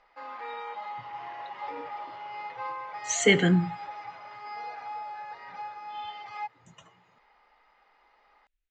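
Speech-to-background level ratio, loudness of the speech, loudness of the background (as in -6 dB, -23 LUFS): 15.0 dB, -24.0 LUFS, -39.0 LUFS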